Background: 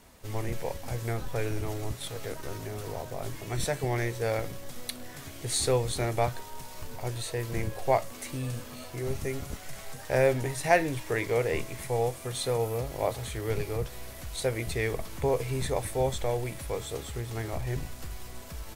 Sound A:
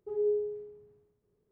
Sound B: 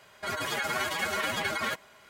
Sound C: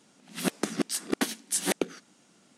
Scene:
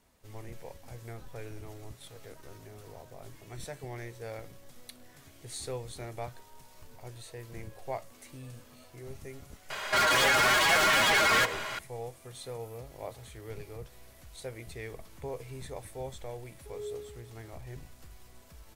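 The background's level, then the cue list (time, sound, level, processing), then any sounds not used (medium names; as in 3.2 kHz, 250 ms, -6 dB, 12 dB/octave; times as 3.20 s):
background -12 dB
9.70 s: add B -1 dB + overdrive pedal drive 28 dB, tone 5.8 kHz, clips at -16.5 dBFS
16.59 s: add A -5 dB + high-pass 720 Hz 6 dB/octave
not used: C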